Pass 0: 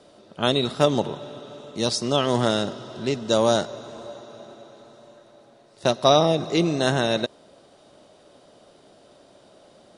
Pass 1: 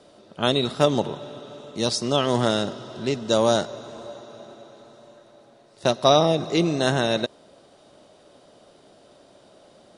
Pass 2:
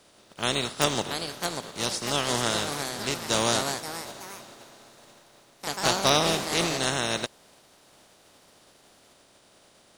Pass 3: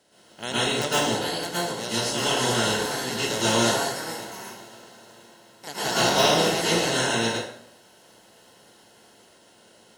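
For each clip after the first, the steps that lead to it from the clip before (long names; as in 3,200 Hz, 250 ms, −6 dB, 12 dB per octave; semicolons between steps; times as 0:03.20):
no processing that can be heard
compressing power law on the bin magnitudes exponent 0.47; delay with pitch and tempo change per echo 748 ms, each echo +3 semitones, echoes 3, each echo −6 dB; level −5.5 dB
notch comb filter 1,200 Hz; dense smooth reverb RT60 0.67 s, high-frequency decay 0.75×, pre-delay 100 ms, DRR −9 dB; level −5 dB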